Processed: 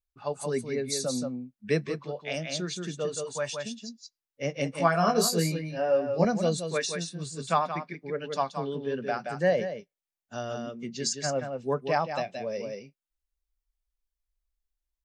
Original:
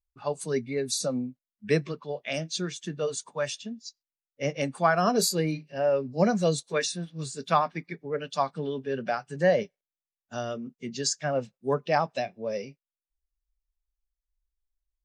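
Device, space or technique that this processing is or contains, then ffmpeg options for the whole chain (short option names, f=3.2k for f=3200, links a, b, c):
ducked delay: -filter_complex "[0:a]asplit=3[a][b][c];[b]adelay=175,volume=-3.5dB[d];[c]apad=whole_len=671319[e];[d][e]sidechaincompress=threshold=-25dB:ratio=8:attack=32:release=1010[f];[a][f]amix=inputs=2:normalize=0,asettb=1/sr,asplit=3[g][h][i];[g]atrim=end=4.764[j];[h]atrim=start=4.76:end=6.25,asetpts=PTS-STARTPTS,afade=t=in:d=0.004:c=qsin,afade=t=out:st=1.486:d=0.004:c=qsin,asplit=2[k][l];[l]adelay=18,volume=-3.5dB[m];[k][m]amix=inputs=2:normalize=0,atrim=end_sample=65709[n];[i]atrim=start=6.246[o];[j][n]acrossfade=d=0.004:c1=hsin:c2=qsin[p];[p][o]acrossfade=d=0.004:c1=qsin:c2=hsin,volume=-2dB"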